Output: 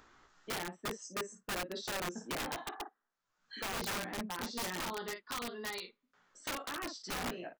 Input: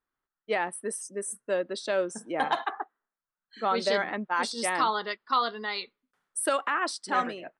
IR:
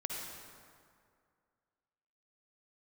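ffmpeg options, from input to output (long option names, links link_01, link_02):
-filter_complex "[0:a]acompressor=mode=upward:threshold=-40dB:ratio=2.5,asplit=2[link_01][link_02];[link_02]aecho=0:1:17|54:0.668|0.335[link_03];[link_01][link_03]amix=inputs=2:normalize=0,aresample=16000,aresample=44100,acrossover=split=360[link_04][link_05];[link_05]acompressor=threshold=-36dB:ratio=6[link_06];[link_04][link_06]amix=inputs=2:normalize=0,aeval=exprs='(mod(28.2*val(0)+1,2)-1)/28.2':channel_layout=same,volume=-3dB"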